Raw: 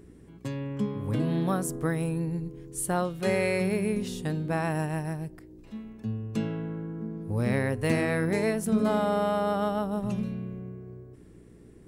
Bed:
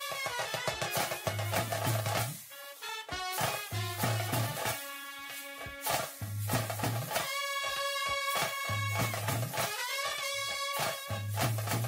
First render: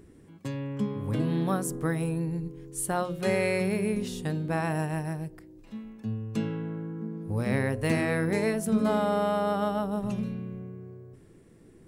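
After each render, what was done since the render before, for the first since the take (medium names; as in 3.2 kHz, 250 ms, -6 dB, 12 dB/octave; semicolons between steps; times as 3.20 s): de-hum 60 Hz, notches 11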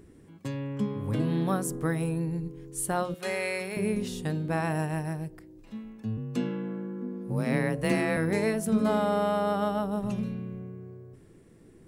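3.14–3.77 s: high-pass 830 Hz 6 dB/octave; 6.17–8.17 s: frequency shift +28 Hz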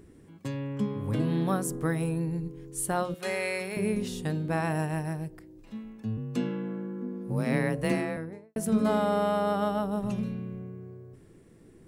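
7.74–8.56 s: studio fade out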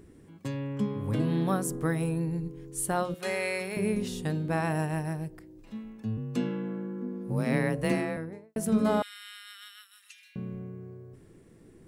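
9.02–10.36 s: steep high-pass 1.7 kHz 48 dB/octave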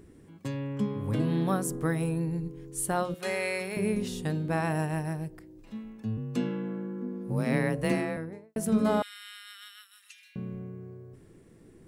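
no audible change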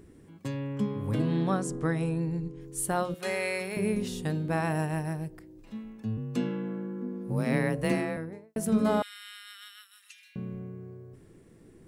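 1.22–2.61 s: low-pass 8.4 kHz 24 dB/octave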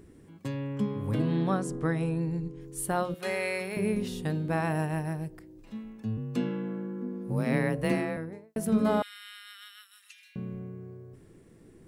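dynamic bell 7.2 kHz, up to -5 dB, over -57 dBFS, Q 1.2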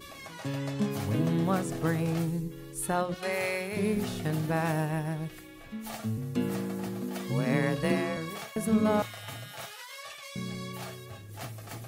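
add bed -9.5 dB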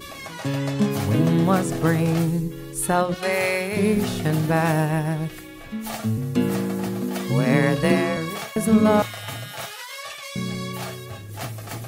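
trim +8.5 dB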